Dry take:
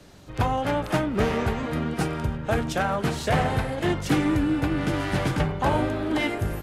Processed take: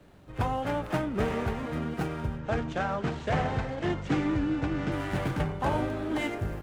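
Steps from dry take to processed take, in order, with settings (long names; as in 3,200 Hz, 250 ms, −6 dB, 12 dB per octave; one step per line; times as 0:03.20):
running median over 9 samples
0:02.39–0:04.92: low-pass filter 7,300 Hz 24 dB per octave
level −5 dB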